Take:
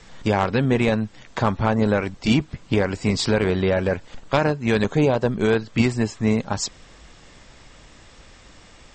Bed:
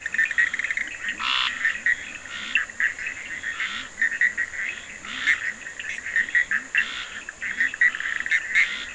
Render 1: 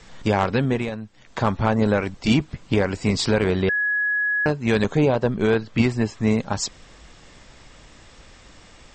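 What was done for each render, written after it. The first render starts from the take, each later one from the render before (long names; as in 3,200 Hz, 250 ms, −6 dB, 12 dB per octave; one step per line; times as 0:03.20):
0:00.47–0:01.58: duck −10 dB, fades 0.43 s equal-power
0:03.69–0:04.46: beep over 1,680 Hz −19 dBFS
0:04.97–0:06.18: high-frequency loss of the air 64 metres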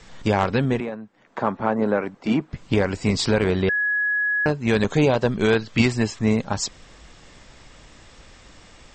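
0:00.80–0:02.53: three-way crossover with the lows and the highs turned down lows −22 dB, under 170 Hz, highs −14 dB, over 2,000 Hz
0:04.90–0:06.19: high-shelf EQ 2,100 Hz +8 dB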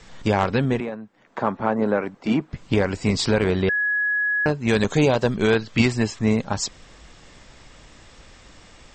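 0:04.68–0:05.36: high-shelf EQ 6,600 Hz +9 dB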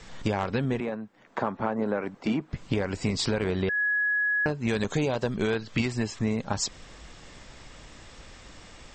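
downward compressor 5 to 1, threshold −24 dBFS, peak gain reduction 10.5 dB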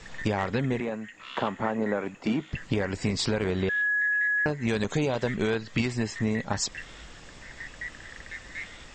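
mix in bed −19 dB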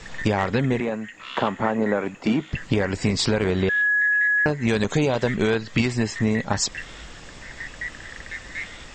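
level +5.5 dB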